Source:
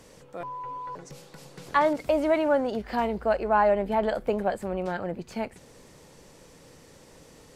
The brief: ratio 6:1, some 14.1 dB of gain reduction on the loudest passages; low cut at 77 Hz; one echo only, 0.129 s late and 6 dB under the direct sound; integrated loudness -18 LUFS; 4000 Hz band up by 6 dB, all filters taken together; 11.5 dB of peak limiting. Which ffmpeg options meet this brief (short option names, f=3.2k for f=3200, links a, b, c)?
-af "highpass=77,equalizer=f=4k:t=o:g=8,acompressor=threshold=-33dB:ratio=6,alimiter=level_in=6dB:limit=-24dB:level=0:latency=1,volume=-6dB,aecho=1:1:129:0.501,volume=21.5dB"